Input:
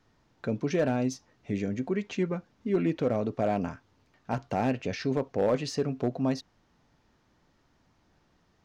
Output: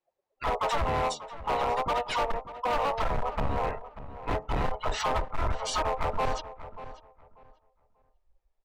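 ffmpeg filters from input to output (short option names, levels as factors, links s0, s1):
-filter_complex "[0:a]afftfilt=real='real(if(lt(b,1008),b+24*(1-2*mod(floor(b/24),2)),b),0)':imag='imag(if(lt(b,1008),b+24*(1-2*mod(floor(b/24),2)),b),0)':win_size=2048:overlap=0.75,bandreject=f=227:t=h:w=4,bandreject=f=454:t=h:w=4,bandreject=f=681:t=h:w=4,bandreject=f=908:t=h:w=4,bandreject=f=1135:t=h:w=4,asplit=3[s0][s1][s2];[s1]asetrate=29433,aresample=44100,atempo=1.49831,volume=0.891[s3];[s2]asetrate=58866,aresample=44100,atempo=0.749154,volume=0.891[s4];[s0][s3][s4]amix=inputs=3:normalize=0,asubboost=boost=5.5:cutoff=69,acompressor=threshold=0.0708:ratio=12,afftdn=nr=30:nf=-47,asoftclip=type=hard:threshold=0.0398,asplit=2[s5][s6];[s6]adelay=589,lowpass=f=2400:p=1,volume=0.211,asplit=2[s7][s8];[s8]adelay=589,lowpass=f=2400:p=1,volume=0.22,asplit=2[s9][s10];[s10]adelay=589,lowpass=f=2400:p=1,volume=0.22[s11];[s5][s7][s9][s11]amix=inputs=4:normalize=0,volume=1.58"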